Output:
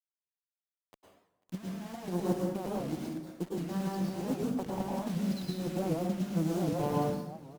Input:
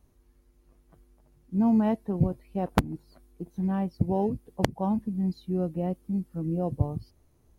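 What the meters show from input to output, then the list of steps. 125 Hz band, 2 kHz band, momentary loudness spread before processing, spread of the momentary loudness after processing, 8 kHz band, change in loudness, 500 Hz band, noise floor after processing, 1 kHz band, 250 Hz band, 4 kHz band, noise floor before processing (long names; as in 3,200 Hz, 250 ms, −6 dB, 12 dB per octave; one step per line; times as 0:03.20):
−6.0 dB, −5.0 dB, 9 LU, 9 LU, +3.5 dB, −5.5 dB, −2.5 dB, below −85 dBFS, −4.0 dB, −5.5 dB, 0.0 dB, −65 dBFS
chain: elliptic band-pass filter 160–6,600 Hz, stop band 40 dB
spectral tilt +1.5 dB per octave
compressor whose output falls as the input rises −34 dBFS, ratio −0.5
bit reduction 8 bits
harmonic generator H 7 −25 dB, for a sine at −20 dBFS
repeating echo 492 ms, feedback 59%, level −21 dB
dense smooth reverb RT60 0.88 s, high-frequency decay 0.75×, pre-delay 95 ms, DRR −3 dB
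wow of a warped record 78 rpm, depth 160 cents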